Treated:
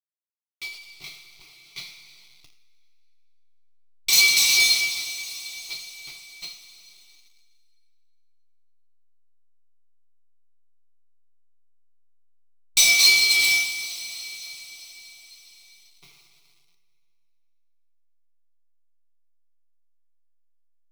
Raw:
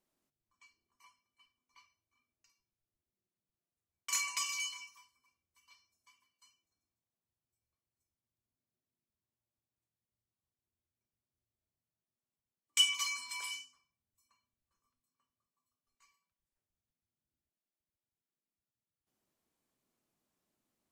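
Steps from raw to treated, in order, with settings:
lower of the sound and its delayed copy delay 0.5 ms
hum removal 75.6 Hz, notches 8
slack as between gear wheels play −55.5 dBFS
spectral tilt +3 dB per octave
coupled-rooms reverb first 0.45 s, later 2.7 s, from −18 dB, DRR 7 dB
power curve on the samples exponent 0.35
flat-topped bell 3,100 Hz +13.5 dB
phaser with its sweep stopped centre 350 Hz, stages 8
expander for the loud parts 1.5 to 1, over −35 dBFS
level −2 dB

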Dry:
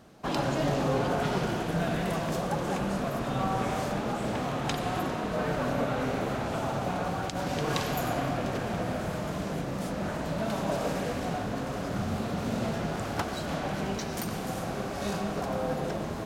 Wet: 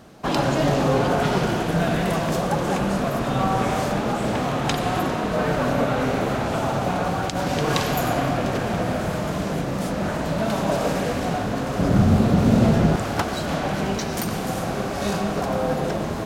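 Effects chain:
0:11.79–0:12.96: low-shelf EQ 420 Hz +9.5 dB
level +7.5 dB

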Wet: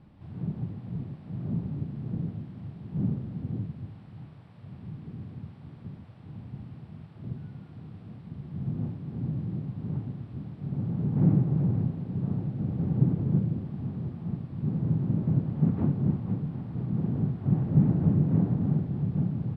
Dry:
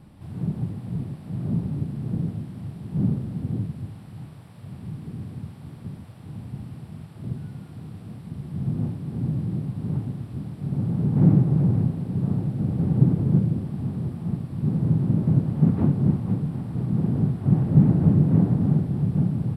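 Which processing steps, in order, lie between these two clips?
low-pass filter 3,800 Hz 12 dB per octave
level −5.5 dB

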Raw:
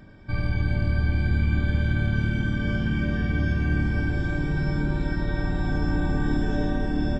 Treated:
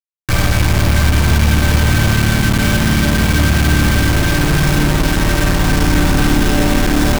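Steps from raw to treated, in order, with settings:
in parallel at +1.5 dB: brickwall limiter −20.5 dBFS, peak gain reduction 9.5 dB
on the sum: bit reduction 4 bits
level +6 dB

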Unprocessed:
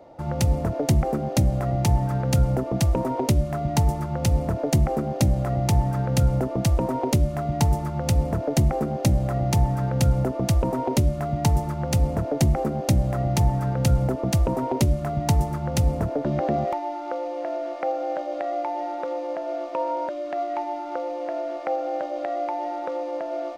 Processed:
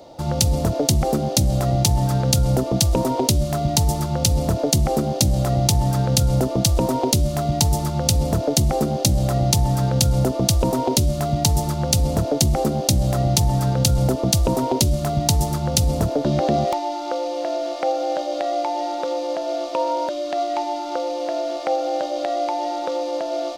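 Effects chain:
high shelf with overshoot 2,800 Hz +10.5 dB, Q 1.5
in parallel at +0.5 dB: compressor whose output falls as the input rises −22 dBFS, ratio −1
on the sum: level −2.5 dB

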